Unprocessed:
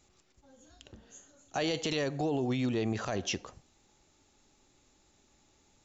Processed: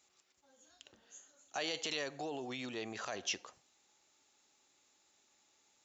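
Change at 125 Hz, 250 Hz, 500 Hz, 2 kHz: -19.5, -13.5, -9.5, -3.0 dB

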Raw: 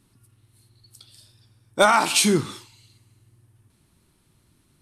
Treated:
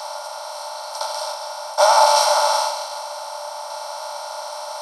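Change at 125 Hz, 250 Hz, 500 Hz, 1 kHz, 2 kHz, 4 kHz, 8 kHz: under -40 dB, under -40 dB, +5.5 dB, +8.5 dB, -3.0 dB, +5.0 dB, +2.0 dB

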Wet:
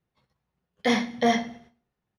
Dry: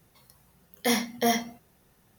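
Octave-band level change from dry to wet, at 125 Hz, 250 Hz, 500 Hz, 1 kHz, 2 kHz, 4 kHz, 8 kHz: +3.0, +3.5, +3.0, +3.0, +2.5, -0.5, -8.0 dB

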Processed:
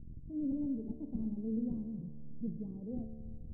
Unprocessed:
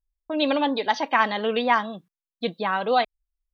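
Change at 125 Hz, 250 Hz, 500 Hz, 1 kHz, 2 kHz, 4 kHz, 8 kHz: +0.5 dB, -6.5 dB, -24.0 dB, under -40 dB, under -40 dB, under -40 dB, n/a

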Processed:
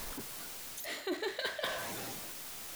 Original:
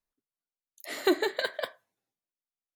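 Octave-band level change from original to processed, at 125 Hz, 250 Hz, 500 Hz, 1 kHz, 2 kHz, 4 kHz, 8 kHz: n/a, -9.5 dB, -8.5 dB, -4.5 dB, -4.0 dB, -2.0 dB, +6.5 dB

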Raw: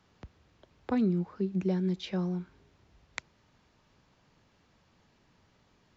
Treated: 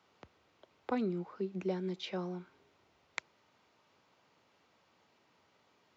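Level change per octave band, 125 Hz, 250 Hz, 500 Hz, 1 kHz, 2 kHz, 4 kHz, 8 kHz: -10.5 dB, -8.5 dB, -2.5 dB, 0.0 dB, -1.0 dB, -1.5 dB, n/a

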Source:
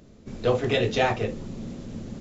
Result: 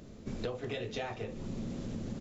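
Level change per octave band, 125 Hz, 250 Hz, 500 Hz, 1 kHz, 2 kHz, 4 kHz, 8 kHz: -10.0 dB, -8.0 dB, -14.0 dB, -16.0 dB, -14.5 dB, -13.0 dB, n/a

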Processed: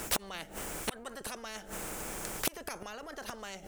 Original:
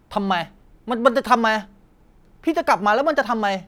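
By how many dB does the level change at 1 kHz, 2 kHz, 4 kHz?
-23.5, -18.0, -9.5 dB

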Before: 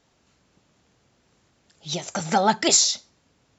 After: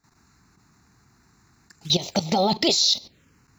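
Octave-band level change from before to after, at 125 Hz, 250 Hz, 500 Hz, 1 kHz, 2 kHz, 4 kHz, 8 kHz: +4.0 dB, +2.5 dB, +1.0 dB, -3.5 dB, -6.0 dB, +4.0 dB, n/a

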